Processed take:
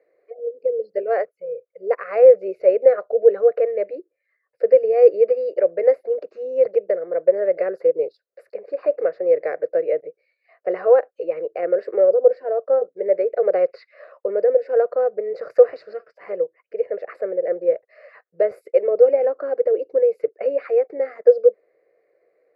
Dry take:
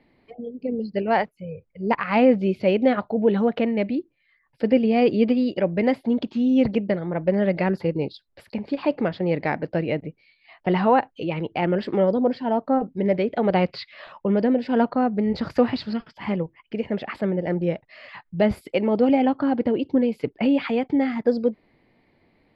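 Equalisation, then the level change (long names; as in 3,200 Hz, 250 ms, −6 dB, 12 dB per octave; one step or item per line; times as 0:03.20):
high-pass with resonance 490 Hz, resonance Q 4.5
high-shelf EQ 2,800 Hz −8.5 dB
phaser with its sweep stopped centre 890 Hz, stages 6
−3.0 dB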